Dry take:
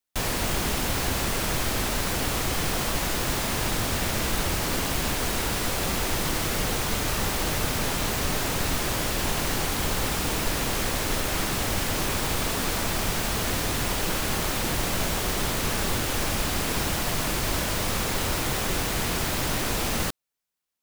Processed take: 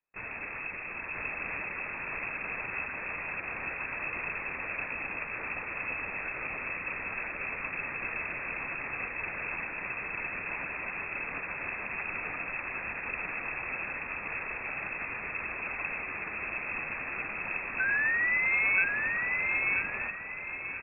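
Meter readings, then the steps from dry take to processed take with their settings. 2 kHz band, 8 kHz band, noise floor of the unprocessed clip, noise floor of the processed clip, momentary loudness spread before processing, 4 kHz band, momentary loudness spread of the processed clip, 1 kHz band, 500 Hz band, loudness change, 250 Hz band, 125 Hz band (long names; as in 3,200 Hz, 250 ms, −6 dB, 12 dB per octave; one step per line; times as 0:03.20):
+1.5 dB, below −40 dB, −28 dBFS, −40 dBFS, 0 LU, below −35 dB, 9 LU, −10.0 dB, −14.0 dB, −6.5 dB, −17.5 dB, −21.5 dB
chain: high-pass filter 130 Hz 6 dB per octave
bit-depth reduction 12 bits, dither triangular
sound drawn into the spectrogram fall, 0:17.79–0:18.84, 340–1,100 Hz −23 dBFS
linear-prediction vocoder at 8 kHz pitch kept
repeating echo 981 ms, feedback 40%, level −3 dB
voice inversion scrambler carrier 2,600 Hz
expander for the loud parts 1.5 to 1, over −36 dBFS
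level −4.5 dB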